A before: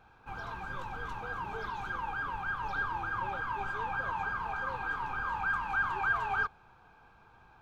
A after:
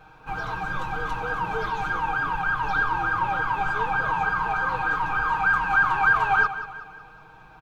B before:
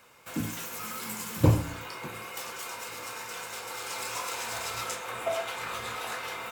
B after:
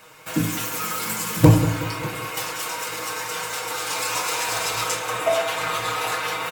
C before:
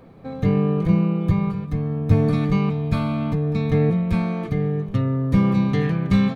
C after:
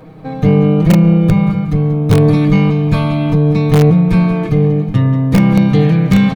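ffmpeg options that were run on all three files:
-filter_complex "[0:a]aecho=1:1:6.4:0.73,aecho=1:1:185|370|555|740|925:0.224|0.105|0.0495|0.0232|0.0109,asplit=2[s0][s1];[s1]aeval=exprs='(mod(2.11*val(0)+1,2)-1)/2.11':c=same,volume=0.562[s2];[s0][s2]amix=inputs=2:normalize=0,acontrast=29,volume=0.891"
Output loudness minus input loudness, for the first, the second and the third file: +10.5 LU, +9.5 LU, +9.5 LU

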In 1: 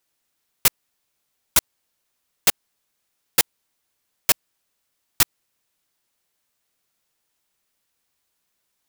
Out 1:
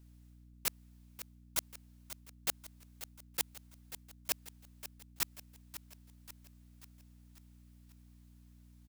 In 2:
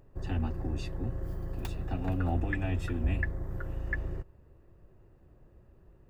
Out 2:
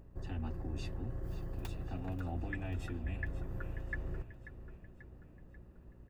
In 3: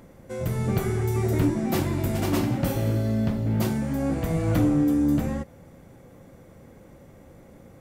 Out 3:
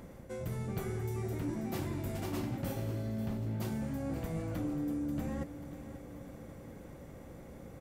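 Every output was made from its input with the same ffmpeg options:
-af "areverse,acompressor=threshold=0.0178:ratio=4,areverse,aeval=exprs='val(0)+0.00158*(sin(2*PI*60*n/s)+sin(2*PI*2*60*n/s)/2+sin(2*PI*3*60*n/s)/3+sin(2*PI*4*60*n/s)/4+sin(2*PI*5*60*n/s)/5)':c=same,aecho=1:1:538|1076|1614|2152|2690:0.224|0.119|0.0629|0.0333|0.0177,volume=0.891"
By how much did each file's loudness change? -19.0 LU, -7.5 LU, -13.0 LU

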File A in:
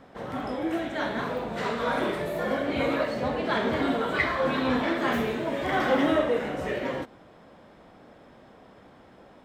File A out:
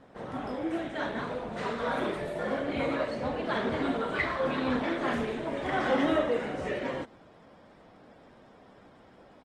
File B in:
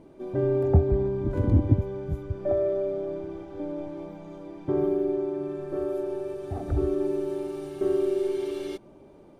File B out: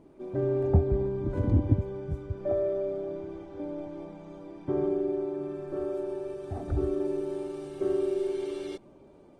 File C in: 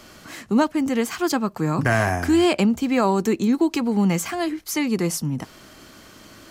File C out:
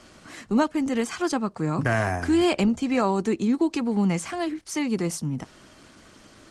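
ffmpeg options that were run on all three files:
-af "aresample=22050,aresample=44100,volume=0.708" -ar 48000 -c:a libopus -b:a 20k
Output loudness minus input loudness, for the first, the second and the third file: -3.5 LU, -3.0 LU, -3.5 LU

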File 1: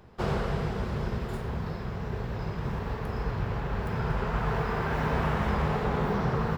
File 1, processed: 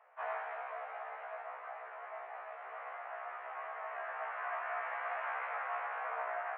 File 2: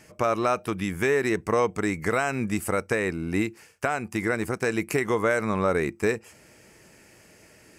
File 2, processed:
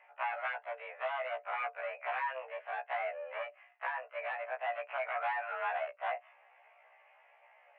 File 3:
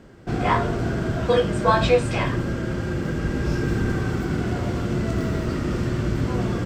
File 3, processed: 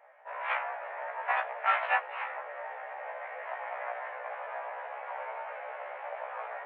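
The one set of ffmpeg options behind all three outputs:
-af "aeval=exprs='0.562*(cos(1*acos(clip(val(0)/0.562,-1,1)))-cos(1*PI/2))+0.0447*(cos(3*acos(clip(val(0)/0.562,-1,1)))-cos(3*PI/2))+0.158*(cos(7*acos(clip(val(0)/0.562,-1,1)))-cos(7*PI/2))':c=same,highpass=f=350:t=q:w=0.5412,highpass=f=350:t=q:w=1.307,lowpass=f=2200:t=q:w=0.5176,lowpass=f=2200:t=q:w=0.7071,lowpass=f=2200:t=q:w=1.932,afreqshift=260,afftfilt=real='re*1.73*eq(mod(b,3),0)':imag='im*1.73*eq(mod(b,3),0)':win_size=2048:overlap=0.75,volume=0.596"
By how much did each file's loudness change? -10.5 LU, -11.5 LU, -11.5 LU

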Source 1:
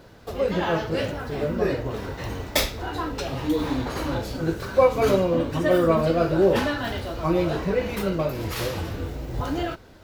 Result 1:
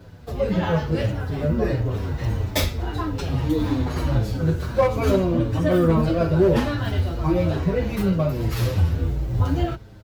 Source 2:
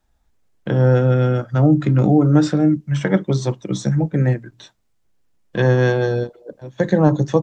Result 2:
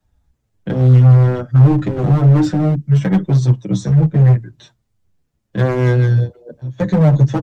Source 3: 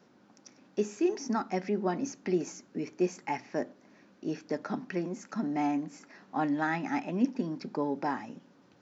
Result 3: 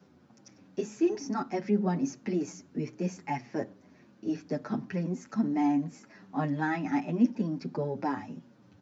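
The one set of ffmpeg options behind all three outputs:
-filter_complex "[0:a]equalizer=f=91:w=0.61:g=13.5,acrossover=split=110[s0][s1];[s1]asoftclip=type=hard:threshold=0.316[s2];[s0][s2]amix=inputs=2:normalize=0,asplit=2[s3][s4];[s4]adelay=7.4,afreqshift=-1.6[s5];[s3][s5]amix=inputs=2:normalize=1,volume=1.12"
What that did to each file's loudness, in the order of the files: +2.0 LU, +4.0 LU, +1.5 LU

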